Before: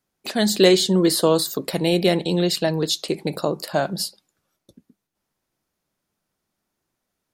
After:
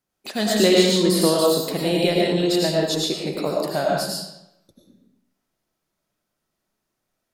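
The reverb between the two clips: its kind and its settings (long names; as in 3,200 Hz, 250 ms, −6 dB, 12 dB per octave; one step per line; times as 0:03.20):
comb and all-pass reverb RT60 0.85 s, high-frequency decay 0.85×, pre-delay 60 ms, DRR −3 dB
level −4 dB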